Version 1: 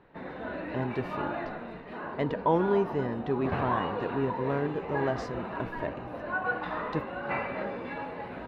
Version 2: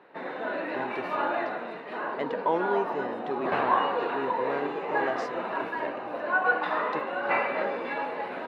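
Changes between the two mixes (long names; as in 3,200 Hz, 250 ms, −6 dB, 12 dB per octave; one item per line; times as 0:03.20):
background +6.5 dB
master: add high-pass filter 360 Hz 12 dB per octave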